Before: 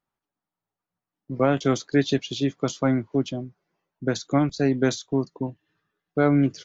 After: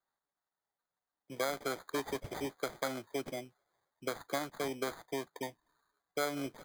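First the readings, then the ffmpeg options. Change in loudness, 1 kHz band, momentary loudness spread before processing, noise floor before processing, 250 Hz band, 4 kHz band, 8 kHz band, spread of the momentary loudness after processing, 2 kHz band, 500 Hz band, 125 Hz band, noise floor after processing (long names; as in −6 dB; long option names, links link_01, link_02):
−14.5 dB, −9.0 dB, 11 LU, below −85 dBFS, −20.0 dB, −9.5 dB, can't be measured, 8 LU, −8.5 dB, −12.5 dB, −24.0 dB, below −85 dBFS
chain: -filter_complex "[0:a]acrossover=split=470 3000:gain=0.1 1 0.126[link_01][link_02][link_03];[link_01][link_02][link_03]amix=inputs=3:normalize=0,acompressor=threshold=-34dB:ratio=3,acrusher=samples=16:mix=1:aa=0.000001"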